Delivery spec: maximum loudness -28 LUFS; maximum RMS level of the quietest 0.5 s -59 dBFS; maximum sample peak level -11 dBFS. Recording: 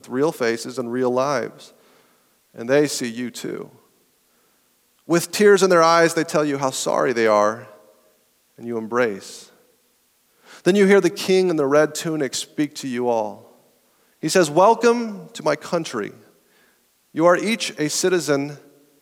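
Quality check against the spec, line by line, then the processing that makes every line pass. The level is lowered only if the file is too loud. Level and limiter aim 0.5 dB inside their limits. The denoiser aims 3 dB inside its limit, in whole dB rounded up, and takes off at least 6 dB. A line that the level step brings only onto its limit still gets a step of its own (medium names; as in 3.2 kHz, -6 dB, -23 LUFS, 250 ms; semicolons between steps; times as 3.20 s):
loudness -19.5 LUFS: fail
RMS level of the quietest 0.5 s -63 dBFS: pass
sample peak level -4.0 dBFS: fail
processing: trim -9 dB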